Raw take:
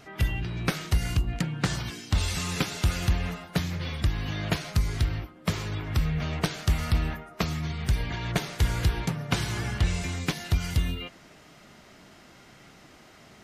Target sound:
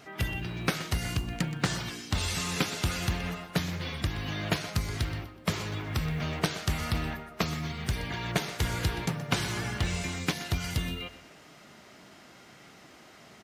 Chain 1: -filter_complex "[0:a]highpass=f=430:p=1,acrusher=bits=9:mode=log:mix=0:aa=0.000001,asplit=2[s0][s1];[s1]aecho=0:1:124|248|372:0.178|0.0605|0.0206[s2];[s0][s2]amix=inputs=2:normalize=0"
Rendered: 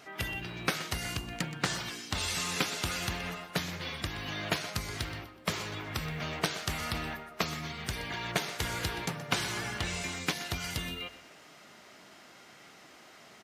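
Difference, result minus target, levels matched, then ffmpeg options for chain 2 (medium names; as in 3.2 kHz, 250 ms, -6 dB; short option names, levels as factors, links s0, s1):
125 Hz band -5.0 dB
-filter_complex "[0:a]highpass=f=140:p=1,acrusher=bits=9:mode=log:mix=0:aa=0.000001,asplit=2[s0][s1];[s1]aecho=0:1:124|248|372:0.178|0.0605|0.0206[s2];[s0][s2]amix=inputs=2:normalize=0"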